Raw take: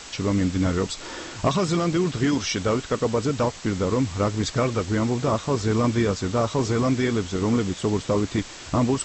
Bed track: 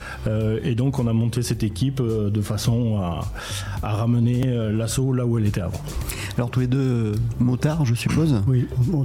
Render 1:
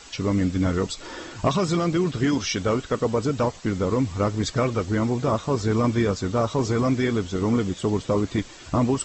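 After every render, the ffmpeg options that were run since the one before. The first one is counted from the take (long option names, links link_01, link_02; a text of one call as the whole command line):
ffmpeg -i in.wav -af "afftdn=noise_reduction=8:noise_floor=-40" out.wav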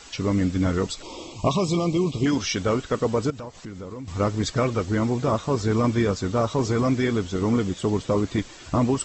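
ffmpeg -i in.wav -filter_complex "[0:a]asettb=1/sr,asplit=3[link_01][link_02][link_03];[link_01]atrim=end=1.024[link_04];[link_02]atrim=start=1.02:end=2.26,asetpts=PTS-STARTPTS,afade=type=in:duration=0.004:curve=qsin,afade=type=out:start_time=1.236:duration=0.004:curve=qsin,asuperstop=centerf=1600:order=8:qfactor=1.6[link_05];[link_03]atrim=start=2.256[link_06];[link_04][link_05]acrossfade=duration=0.004:curve1=hsin:curve2=qsin[link_07];[link_07][link_06]acrossfade=duration=0.004:curve1=qsin:curve2=hsin,asettb=1/sr,asplit=3[link_08][link_09][link_10];[link_08]atrim=end=3.304[link_11];[link_09]atrim=start=3.3:end=4.08,asetpts=PTS-STARTPTS,afade=type=in:duration=0.004:curve=qsin,afade=type=out:start_time=0.776:duration=0.004:curve=qsin,acompressor=threshold=-37dB:ratio=3:attack=3.2:release=140:knee=1:detection=peak[link_12];[link_10]atrim=start=4.076[link_13];[link_11][link_12]acrossfade=duration=0.004:curve1=hsin:curve2=qsin[link_14];[link_14][link_13]acrossfade=duration=0.004:curve1=qsin:curve2=hsin" out.wav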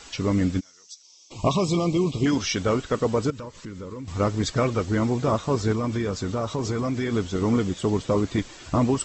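ffmpeg -i in.wav -filter_complex "[0:a]asplit=3[link_01][link_02][link_03];[link_01]afade=type=out:start_time=0.59:duration=0.02[link_04];[link_02]bandpass=frequency=5800:width_type=q:width=6.7,afade=type=in:start_time=0.59:duration=0.02,afade=type=out:start_time=1.3:duration=0.02[link_05];[link_03]afade=type=in:start_time=1.3:duration=0.02[link_06];[link_04][link_05][link_06]amix=inputs=3:normalize=0,asettb=1/sr,asplit=3[link_07][link_08][link_09];[link_07]atrim=end=3.274[link_10];[link_08]atrim=start=3.27:end=4.03,asetpts=PTS-STARTPTS,afade=type=in:duration=0.004:curve=qsin,afade=type=out:start_time=0.756:duration=0.004:curve=qsin,asuperstop=centerf=730:order=4:qfactor=3.1[link_11];[link_09]atrim=start=4.026[link_12];[link_10][link_11]acrossfade=duration=0.004:curve1=hsin:curve2=qsin[link_13];[link_13][link_12]acrossfade=duration=0.004:curve1=qsin:curve2=hsin,asettb=1/sr,asplit=3[link_14][link_15][link_16];[link_14]atrim=end=5.724[link_17];[link_15]atrim=start=5.72:end=7.13,asetpts=PTS-STARTPTS,afade=type=in:duration=0.004:curve=qsin,afade=type=out:start_time=1.406:duration=0.004:curve=qsin,acompressor=threshold=-22dB:ratio=5:attack=3.2:release=140:knee=1:detection=peak[link_18];[link_16]atrim=start=7.126[link_19];[link_17][link_18]acrossfade=duration=0.004:curve1=hsin:curve2=qsin[link_20];[link_20][link_19]acrossfade=duration=0.004:curve1=qsin:curve2=hsin" out.wav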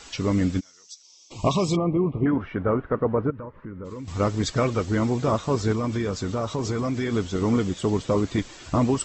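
ffmpeg -i in.wav -filter_complex "[0:a]asplit=3[link_01][link_02][link_03];[link_01]afade=type=out:start_time=1.75:duration=0.02[link_04];[link_02]lowpass=frequency=1700:width=0.5412,lowpass=frequency=1700:width=1.3066,afade=type=in:start_time=1.75:duration=0.02,afade=type=out:start_time=3.84:duration=0.02[link_05];[link_03]afade=type=in:start_time=3.84:duration=0.02[link_06];[link_04][link_05][link_06]amix=inputs=3:normalize=0" out.wav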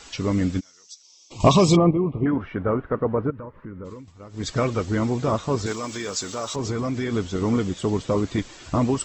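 ffmpeg -i in.wav -filter_complex "[0:a]asettb=1/sr,asplit=3[link_01][link_02][link_03];[link_01]atrim=end=1.404[link_04];[link_02]atrim=start=1.4:end=1.91,asetpts=PTS-STARTPTS,afade=type=in:duration=0.004:curve=qsin,afade=type=out:start_time=0.506:duration=0.004:curve=qsin,acontrast=89[link_05];[link_03]atrim=start=1.906[link_06];[link_04][link_05]acrossfade=duration=0.004:curve1=hsin:curve2=qsin[link_07];[link_07][link_06]acrossfade=duration=0.004:curve1=qsin:curve2=hsin,asettb=1/sr,asplit=3[link_08][link_09][link_10];[link_08]atrim=end=5.664[link_11];[link_09]atrim=start=5.66:end=6.56,asetpts=PTS-STARTPTS,afade=type=in:duration=0.004:curve=qsin,afade=type=out:start_time=0.896:duration=0.004:curve=qsin,aemphasis=mode=production:type=riaa[link_12];[link_10]atrim=start=6.556[link_13];[link_11][link_12]acrossfade=duration=0.004:curve1=hsin:curve2=qsin[link_14];[link_14][link_13]acrossfade=duration=0.004:curve1=qsin:curve2=hsin,asplit=3[link_15][link_16][link_17];[link_15]atrim=end=4.12,asetpts=PTS-STARTPTS,afade=type=out:start_time=3.88:duration=0.24:silence=0.1[link_18];[link_16]atrim=start=4.12:end=4.29,asetpts=PTS-STARTPTS,volume=-20dB[link_19];[link_17]atrim=start=4.29,asetpts=PTS-STARTPTS,afade=type=in:duration=0.24:silence=0.1[link_20];[link_18][link_19][link_20]concat=n=3:v=0:a=1" out.wav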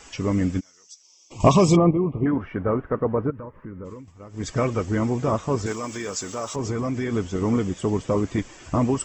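ffmpeg -i in.wav -af "equalizer=frequency=4000:width=2.9:gain=-11,bandreject=frequency=1400:width=22" out.wav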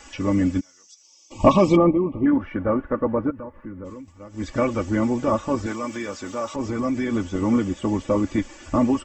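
ffmpeg -i in.wav -filter_complex "[0:a]acrossover=split=3700[link_01][link_02];[link_02]acompressor=threshold=-48dB:ratio=4:attack=1:release=60[link_03];[link_01][link_03]amix=inputs=2:normalize=0,aecho=1:1:3.5:0.69" out.wav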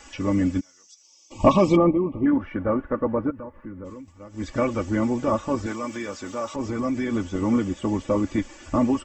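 ffmpeg -i in.wav -af "volume=-1.5dB" out.wav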